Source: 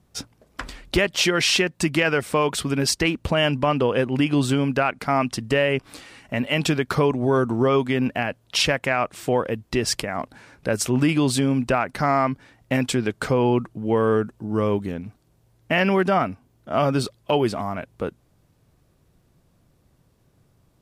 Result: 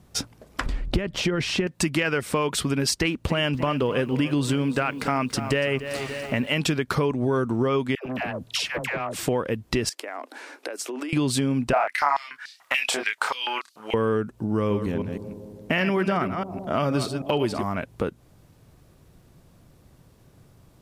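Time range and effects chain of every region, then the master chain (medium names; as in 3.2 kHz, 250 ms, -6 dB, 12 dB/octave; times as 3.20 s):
0.66–1.67 s: compression 4:1, threshold -21 dBFS + tilt EQ -3 dB/octave
2.98–6.57 s: de-esser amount 30% + bit-crushed delay 286 ms, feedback 55%, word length 8-bit, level -15 dB
7.95–9.19 s: compression, threshold -27 dBFS + phase dispersion lows, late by 108 ms, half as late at 690 Hz + transformer saturation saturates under 930 Hz
9.89–11.13 s: steep high-pass 280 Hz 48 dB/octave + compression 20:1, threshold -35 dBFS
11.73–13.94 s: doubling 28 ms -3 dB + step-sequenced high-pass 6.9 Hz 690–4500 Hz
14.55–17.63 s: chunks repeated in reverse 157 ms, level -9.5 dB + bucket-brigade echo 161 ms, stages 1024, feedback 71%, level -20.5 dB
whole clip: dynamic bell 720 Hz, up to -5 dB, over -34 dBFS, Q 2.3; compression 2.5:1, threshold -32 dBFS; trim +7 dB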